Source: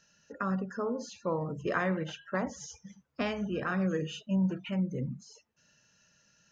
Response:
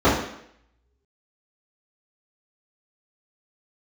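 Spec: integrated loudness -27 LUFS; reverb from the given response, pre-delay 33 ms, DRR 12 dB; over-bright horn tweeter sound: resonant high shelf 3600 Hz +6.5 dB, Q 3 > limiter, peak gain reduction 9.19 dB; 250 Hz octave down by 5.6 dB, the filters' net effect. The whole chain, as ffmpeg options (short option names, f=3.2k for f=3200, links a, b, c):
-filter_complex "[0:a]equalizer=f=250:t=o:g=-9,asplit=2[a][b];[1:a]atrim=start_sample=2205,adelay=33[c];[b][c]afir=irnorm=-1:irlink=0,volume=-35dB[d];[a][d]amix=inputs=2:normalize=0,highshelf=f=3.6k:t=q:w=3:g=6.5,volume=11dB,alimiter=limit=-16.5dB:level=0:latency=1"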